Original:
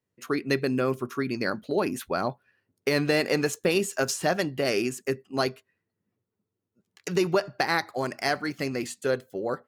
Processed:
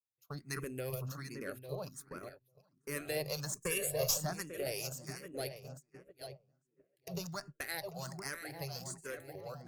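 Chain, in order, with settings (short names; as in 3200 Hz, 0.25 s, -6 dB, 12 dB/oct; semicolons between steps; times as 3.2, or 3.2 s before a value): reverse delay 0.448 s, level -9 dB; low shelf 94 Hz -4 dB; darkening echo 0.846 s, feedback 47%, low-pass 1300 Hz, level -6.5 dB; 1.75–2.89 level quantiser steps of 9 dB; harmonic tremolo 2.8 Hz, depth 50%, crossover 1200 Hz; 0.53–1.14 transient shaper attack -2 dB, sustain +10 dB; 3.56–4.18 comb 1.8 ms, depth 99%; gate -36 dBFS, range -18 dB; EQ curve 150 Hz 0 dB, 230 Hz -16 dB, 320 Hz -14 dB, 570 Hz -7 dB, 860 Hz -11 dB, 3000 Hz -9 dB, 12000 Hz +8 dB; tube stage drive 18 dB, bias 0.7; endless phaser +1.3 Hz; gain +2.5 dB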